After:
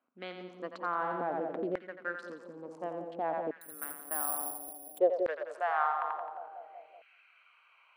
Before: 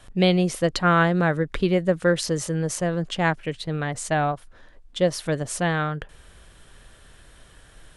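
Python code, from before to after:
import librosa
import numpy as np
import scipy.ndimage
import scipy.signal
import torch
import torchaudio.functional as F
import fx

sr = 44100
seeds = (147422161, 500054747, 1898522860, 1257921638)

p1 = fx.wiener(x, sr, points=25)
p2 = fx.filter_sweep_bandpass(p1, sr, from_hz=250.0, to_hz=2400.0, start_s=4.58, end_s=6.92, q=6.0)
p3 = p2 + fx.echo_split(p2, sr, split_hz=570.0, low_ms=188, high_ms=87, feedback_pct=52, wet_db=-7.0, dry=0)
p4 = fx.filter_lfo_highpass(p3, sr, shape='saw_down', hz=0.57, low_hz=620.0, high_hz=1700.0, q=3.1)
p5 = fx.resample_bad(p4, sr, factor=4, down='none', up='zero_stuff', at=(3.61, 4.99))
p6 = fx.over_compress(p5, sr, threshold_db=-47.0, ratio=-1.0)
p7 = p5 + (p6 * librosa.db_to_amplitude(-2.0))
y = p7 * librosa.db_to_amplitude(6.0)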